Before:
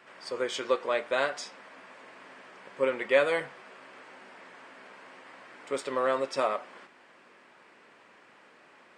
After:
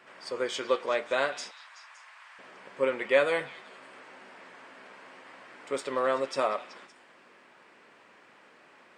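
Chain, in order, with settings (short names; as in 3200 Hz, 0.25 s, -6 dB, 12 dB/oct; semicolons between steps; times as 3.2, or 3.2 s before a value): 1.51–2.39 inverse Chebyshev high-pass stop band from 200 Hz, stop band 70 dB; delay with a stepping band-pass 0.189 s, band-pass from 3000 Hz, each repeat 0.7 oct, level -11 dB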